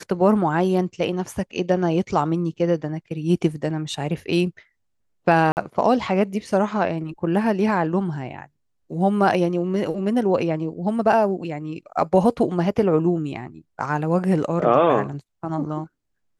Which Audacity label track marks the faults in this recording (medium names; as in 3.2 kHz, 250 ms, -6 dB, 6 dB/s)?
5.520000	5.570000	dropout 49 ms